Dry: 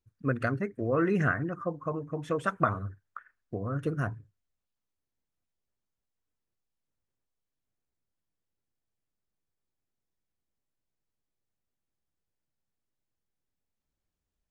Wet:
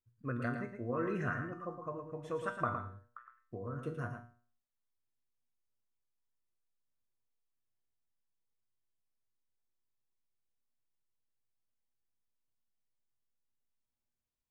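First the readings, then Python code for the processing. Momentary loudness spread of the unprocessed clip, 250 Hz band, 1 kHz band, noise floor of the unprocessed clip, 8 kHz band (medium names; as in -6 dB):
15 LU, -9.0 dB, -7.0 dB, under -85 dBFS, no reading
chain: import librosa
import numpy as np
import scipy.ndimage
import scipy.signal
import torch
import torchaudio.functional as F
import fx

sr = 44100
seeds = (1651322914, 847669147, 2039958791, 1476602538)

y = fx.peak_eq(x, sr, hz=1000.0, db=5.0, octaves=0.26)
y = fx.comb_fb(y, sr, f0_hz=120.0, decay_s=0.45, harmonics='all', damping=0.0, mix_pct=80)
y = y + 10.0 ** (-7.5 / 20.0) * np.pad(y, (int(113 * sr / 1000.0), 0))[:len(y)]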